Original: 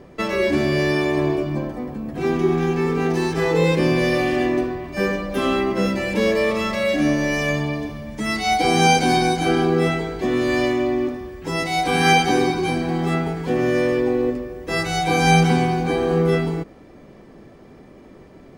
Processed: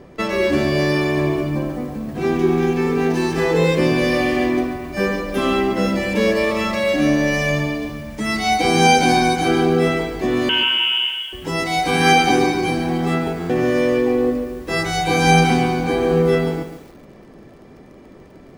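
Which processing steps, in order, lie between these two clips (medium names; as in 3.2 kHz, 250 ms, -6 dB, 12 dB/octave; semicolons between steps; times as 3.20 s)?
10.49–11.33 s: frequency inversion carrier 3.3 kHz; buffer glitch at 13.38 s, samples 512, times 9; bit-crushed delay 142 ms, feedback 35%, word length 7-bit, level -9.5 dB; trim +1.5 dB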